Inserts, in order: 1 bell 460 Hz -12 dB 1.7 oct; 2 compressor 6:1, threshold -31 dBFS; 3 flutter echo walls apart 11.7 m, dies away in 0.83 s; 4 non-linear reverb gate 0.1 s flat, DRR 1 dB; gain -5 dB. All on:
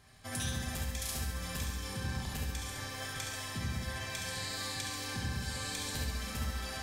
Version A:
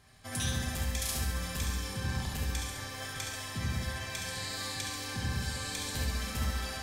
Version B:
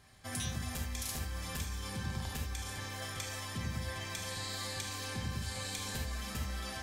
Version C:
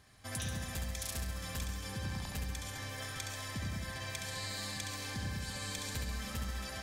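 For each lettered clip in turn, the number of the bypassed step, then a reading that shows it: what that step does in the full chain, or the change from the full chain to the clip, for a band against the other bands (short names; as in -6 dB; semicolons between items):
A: 2, mean gain reduction 2.0 dB; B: 3, echo-to-direct 2.0 dB to -1.0 dB; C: 4, echo-to-direct 2.0 dB to -3.5 dB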